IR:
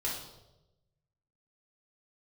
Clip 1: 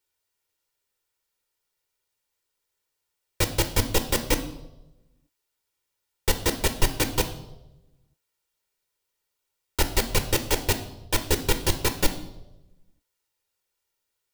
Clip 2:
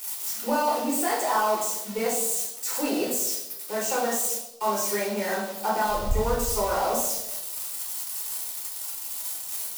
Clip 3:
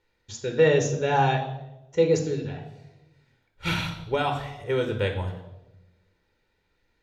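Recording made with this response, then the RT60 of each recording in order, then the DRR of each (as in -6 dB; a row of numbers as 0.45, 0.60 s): 2; 1.0, 1.0, 1.0 s; 7.5, -6.0, 3.5 dB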